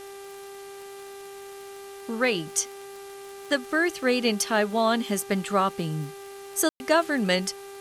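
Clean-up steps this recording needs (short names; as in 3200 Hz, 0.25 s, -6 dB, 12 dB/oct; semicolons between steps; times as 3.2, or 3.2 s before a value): de-click; de-hum 396.1 Hz, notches 11; room tone fill 6.69–6.8; denoiser 29 dB, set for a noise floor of -42 dBFS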